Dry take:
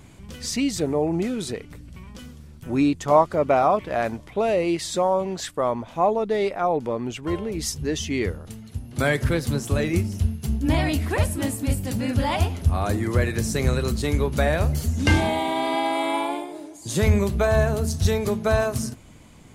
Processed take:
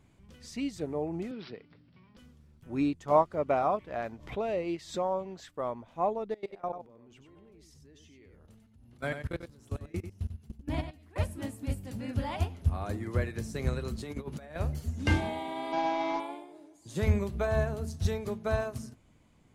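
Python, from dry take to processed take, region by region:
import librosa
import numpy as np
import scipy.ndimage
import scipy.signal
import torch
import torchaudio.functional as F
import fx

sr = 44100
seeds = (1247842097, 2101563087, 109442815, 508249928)

y = fx.chain(x, sr, fx.highpass(hz=110.0, slope=24),
    fx.high_shelf(hz=9800.0, db=5.5),
    fx.resample_bad(factor=4, down='none', up='filtered'), at=(1.31, 2.17))
y = fx.chain(y, sr, fx.peak_eq(hz=9500.0, db=-8.5, octaves=0.32),
    fx.pre_swell(db_per_s=92.0), at=(3.88, 5.57))
y = fx.chain(y, sr, fx.level_steps(step_db=21),
    fx.echo_single(ms=94, db=-6.0), at=(6.34, 11.16))
y = fx.chain(y, sr, fx.highpass(hz=98.0, slope=12),
    fx.over_compress(threshold_db=-26.0, ratio=-0.5), at=(13.98, 14.56))
y = fx.chain(y, sr, fx.cvsd(bps=32000),
    fx.comb(ms=6.2, depth=0.8), at=(15.72, 16.2))
y = fx.high_shelf(y, sr, hz=4400.0, db=-6.5)
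y = fx.upward_expand(y, sr, threshold_db=-30.0, expansion=1.5)
y = y * librosa.db_to_amplitude(-6.0)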